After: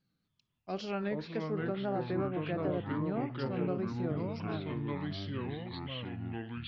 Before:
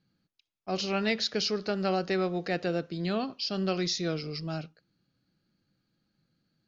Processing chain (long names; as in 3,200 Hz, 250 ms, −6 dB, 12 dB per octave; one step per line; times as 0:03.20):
tape wow and flutter 110 cents
delay with pitch and tempo change per echo 245 ms, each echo −4 semitones, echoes 3
treble cut that deepens with the level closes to 1,100 Hz, closed at −23.5 dBFS
level −5.5 dB